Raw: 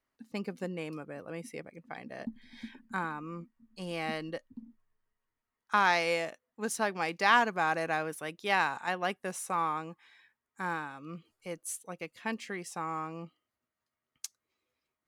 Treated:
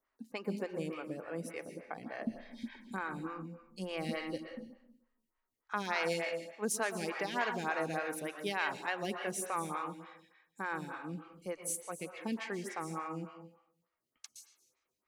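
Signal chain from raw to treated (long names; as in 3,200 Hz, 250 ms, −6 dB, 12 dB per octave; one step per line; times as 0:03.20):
dynamic equaliser 950 Hz, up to −7 dB, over −42 dBFS, Q 1
brickwall limiter −23 dBFS, peak gain reduction 8.5 dB
convolution reverb RT60 0.80 s, pre-delay 112 ms, DRR 5.5 dB
phaser with staggered stages 3.4 Hz
level +2 dB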